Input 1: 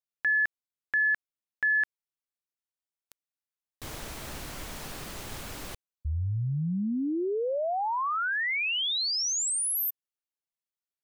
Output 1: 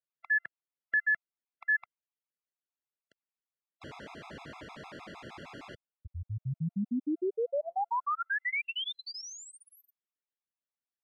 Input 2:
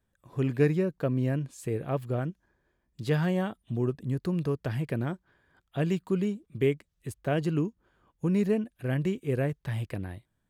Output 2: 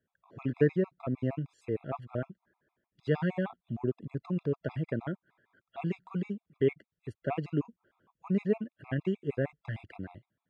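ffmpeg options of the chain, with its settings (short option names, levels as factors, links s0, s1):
-af "highpass=130,lowpass=2700,afftfilt=real='re*gt(sin(2*PI*6.5*pts/sr)*(1-2*mod(floor(b*sr/1024/680),2)),0)':imag='im*gt(sin(2*PI*6.5*pts/sr)*(1-2*mod(floor(b*sr/1024/680),2)),0)':win_size=1024:overlap=0.75"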